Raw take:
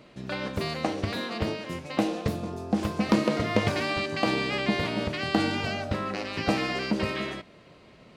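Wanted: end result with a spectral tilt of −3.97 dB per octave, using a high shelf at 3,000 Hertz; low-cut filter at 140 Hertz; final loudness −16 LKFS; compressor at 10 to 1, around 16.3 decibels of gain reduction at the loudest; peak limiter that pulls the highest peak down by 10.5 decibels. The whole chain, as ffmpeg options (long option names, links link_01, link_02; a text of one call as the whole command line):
ffmpeg -i in.wav -af "highpass=140,highshelf=frequency=3000:gain=-9,acompressor=threshold=-37dB:ratio=10,volume=26.5dB,alimiter=limit=-5.5dB:level=0:latency=1" out.wav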